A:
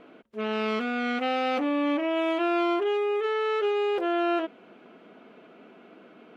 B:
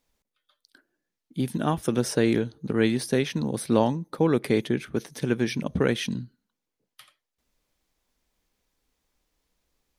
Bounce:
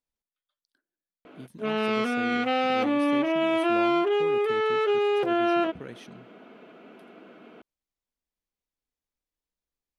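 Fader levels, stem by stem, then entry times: +2.0, −18.0 decibels; 1.25, 0.00 seconds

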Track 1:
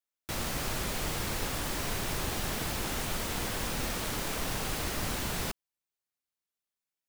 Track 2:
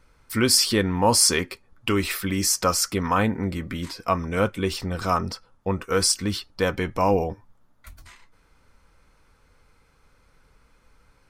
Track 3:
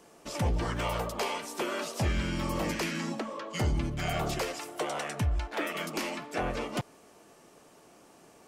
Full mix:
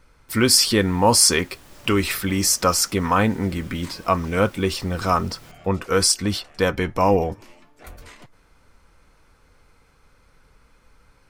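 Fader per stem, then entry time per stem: −15.0, +3.0, −16.0 decibels; 0.00, 0.00, 1.45 seconds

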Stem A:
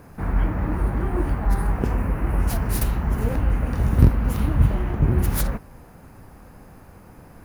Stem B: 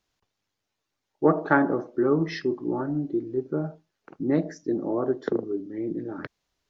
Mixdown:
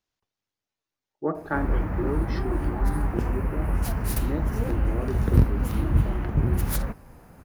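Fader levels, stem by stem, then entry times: −3.5, −7.5 decibels; 1.35, 0.00 seconds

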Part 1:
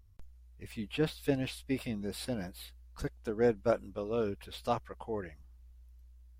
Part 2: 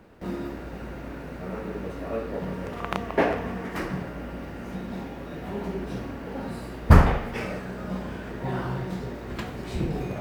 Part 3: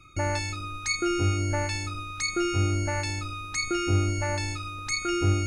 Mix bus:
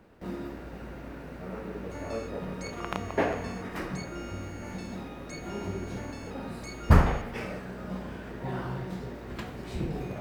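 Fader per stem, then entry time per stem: muted, −4.5 dB, −16.5 dB; muted, 0.00 s, 1.75 s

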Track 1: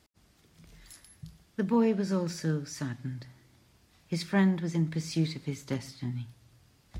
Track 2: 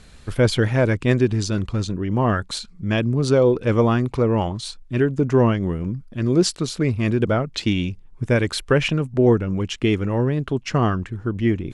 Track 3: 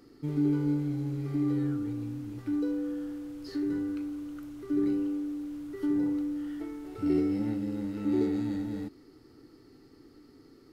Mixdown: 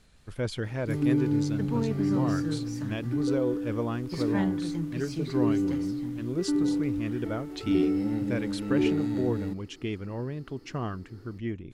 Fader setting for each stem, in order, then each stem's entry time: −5.5, −13.5, +2.0 decibels; 0.00, 0.00, 0.65 seconds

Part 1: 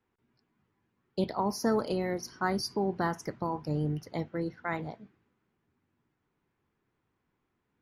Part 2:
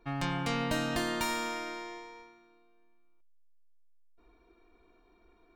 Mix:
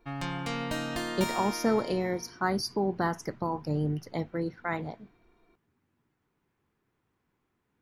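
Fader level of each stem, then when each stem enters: +1.5, −1.5 decibels; 0.00, 0.00 seconds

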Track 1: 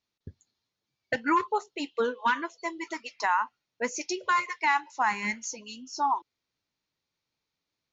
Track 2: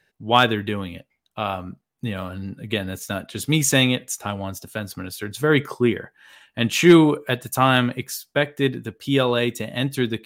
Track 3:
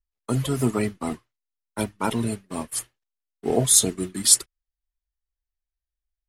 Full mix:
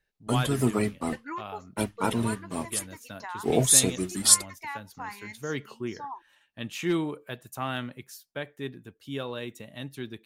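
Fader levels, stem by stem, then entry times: −12.5, −15.0, −2.0 decibels; 0.00, 0.00, 0.00 seconds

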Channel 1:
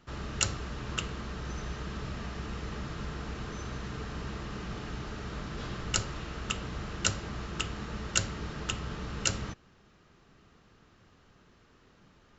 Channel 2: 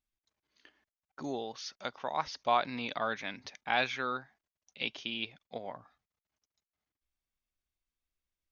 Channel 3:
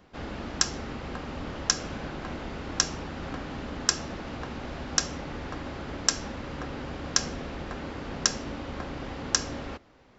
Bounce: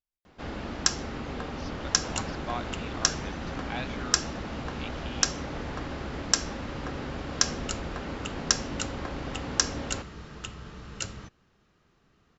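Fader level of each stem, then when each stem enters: −5.5, −7.5, +0.5 decibels; 1.75, 0.00, 0.25 seconds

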